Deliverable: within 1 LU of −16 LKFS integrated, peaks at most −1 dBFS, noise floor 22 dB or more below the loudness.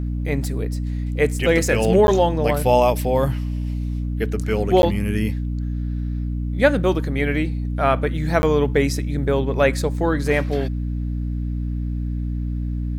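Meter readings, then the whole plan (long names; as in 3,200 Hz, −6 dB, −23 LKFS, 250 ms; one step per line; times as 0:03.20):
number of dropouts 3; longest dropout 11 ms; mains hum 60 Hz; hum harmonics up to 300 Hz; level of the hum −22 dBFS; integrated loudness −21.0 LKFS; sample peak −2.0 dBFS; target loudness −16.0 LKFS
→ repair the gap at 0:02.07/0:04.82/0:08.42, 11 ms
hum removal 60 Hz, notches 5
level +5 dB
brickwall limiter −1 dBFS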